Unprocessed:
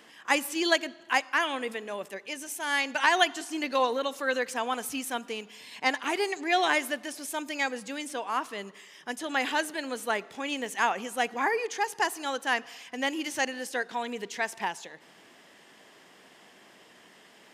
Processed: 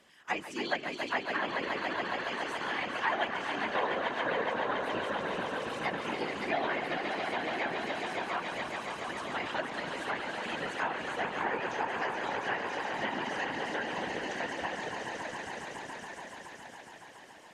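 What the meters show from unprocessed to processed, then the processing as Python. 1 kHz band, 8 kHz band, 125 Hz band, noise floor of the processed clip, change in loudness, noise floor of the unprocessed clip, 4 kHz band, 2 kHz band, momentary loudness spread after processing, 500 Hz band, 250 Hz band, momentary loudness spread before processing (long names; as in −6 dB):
−3.5 dB, −13.0 dB, can't be measured, −51 dBFS, −4.5 dB, −56 dBFS, −6.5 dB, −4.0 dB, 9 LU, −3.0 dB, −4.5 dB, 11 LU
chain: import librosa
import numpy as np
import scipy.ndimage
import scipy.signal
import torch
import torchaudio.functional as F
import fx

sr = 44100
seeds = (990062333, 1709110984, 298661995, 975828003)

y = fx.echo_swell(x, sr, ms=140, loudest=5, wet_db=-7.0)
y = fx.whisperise(y, sr, seeds[0])
y = fx.env_lowpass_down(y, sr, base_hz=2600.0, full_db=-20.0)
y = F.gain(torch.from_numpy(y), -8.0).numpy()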